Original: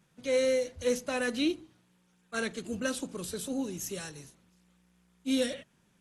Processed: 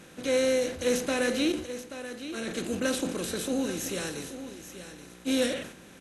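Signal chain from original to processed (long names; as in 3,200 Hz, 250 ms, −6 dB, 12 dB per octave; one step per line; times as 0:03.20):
compressor on every frequency bin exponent 0.6
0:01.52–0:02.48: tuned comb filter 74 Hz, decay 0.22 s, harmonics all, mix 90%
single-tap delay 831 ms −11.5 dB
level that may fall only so fast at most 98 dB per second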